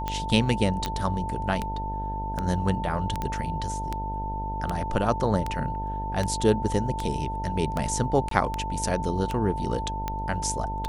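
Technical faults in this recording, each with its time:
buzz 50 Hz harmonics 20 -33 dBFS
tick 78 rpm -14 dBFS
whine 890 Hz -31 dBFS
0.86 s: pop -13 dBFS
3.22 s: pop -16 dBFS
8.29–8.31 s: dropout 23 ms

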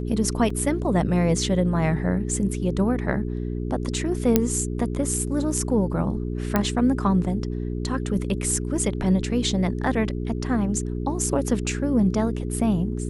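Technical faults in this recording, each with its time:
hum 60 Hz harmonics 7 -28 dBFS
0.50 s: dropout 4 ms
4.36 s: pop -3 dBFS
6.56 s: pop -7 dBFS

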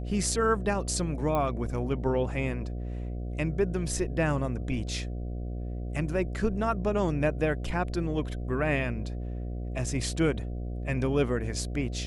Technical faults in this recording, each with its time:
buzz 60 Hz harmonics 12 -34 dBFS
1.35 s: pop -17 dBFS

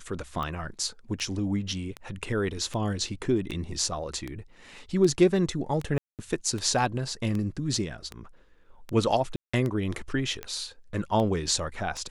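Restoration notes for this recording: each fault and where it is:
tick 78 rpm -20 dBFS
5.98–6.19 s: dropout 208 ms
9.36–9.54 s: dropout 175 ms

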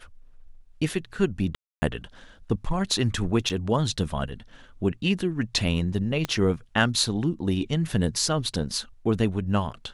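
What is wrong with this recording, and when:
1.55–1.82 s: dropout 270 ms
3.49–3.50 s: dropout 7.3 ms
6.25 s: pop -12 dBFS

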